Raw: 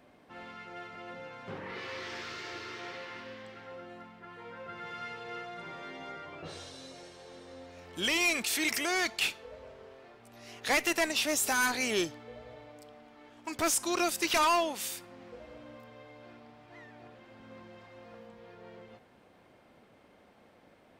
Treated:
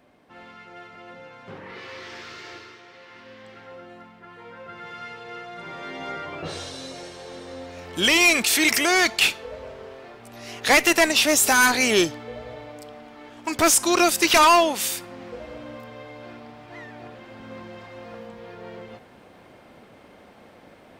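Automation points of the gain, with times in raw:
2.53 s +1.5 dB
2.86 s -6.5 dB
3.54 s +3.5 dB
5.4 s +3.5 dB
6.13 s +11 dB

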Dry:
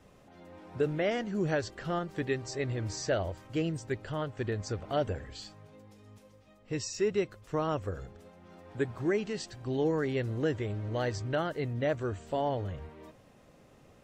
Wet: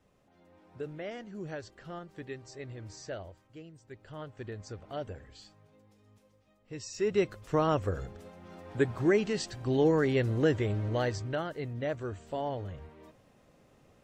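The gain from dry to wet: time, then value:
3.15 s -10 dB
3.71 s -19 dB
4.21 s -8 dB
6.75 s -8 dB
7.25 s +4 dB
10.82 s +4 dB
11.45 s -3.5 dB

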